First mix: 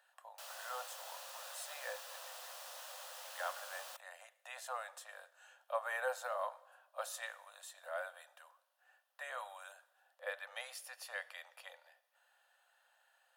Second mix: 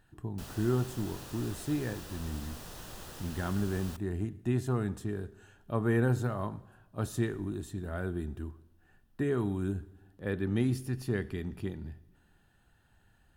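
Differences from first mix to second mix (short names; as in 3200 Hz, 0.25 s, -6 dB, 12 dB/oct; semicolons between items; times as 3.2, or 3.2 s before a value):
background: send on; master: remove Chebyshev high-pass 510 Hz, order 10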